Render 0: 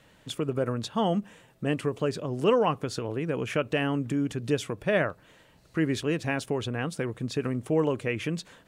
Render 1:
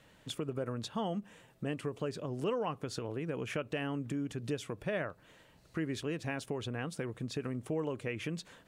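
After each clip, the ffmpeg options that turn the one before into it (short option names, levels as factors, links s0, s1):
-af "acompressor=threshold=0.0224:ratio=2,volume=0.668"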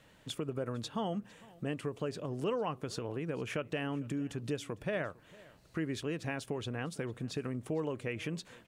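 -af "aecho=1:1:454:0.075"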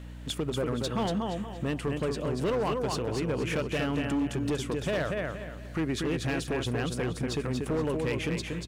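-af "aecho=1:1:237|474|711|948:0.562|0.18|0.0576|0.0184,asoftclip=type=hard:threshold=0.0266,aeval=exprs='val(0)+0.00398*(sin(2*PI*60*n/s)+sin(2*PI*2*60*n/s)/2+sin(2*PI*3*60*n/s)/3+sin(2*PI*4*60*n/s)/4+sin(2*PI*5*60*n/s)/5)':c=same,volume=2.24"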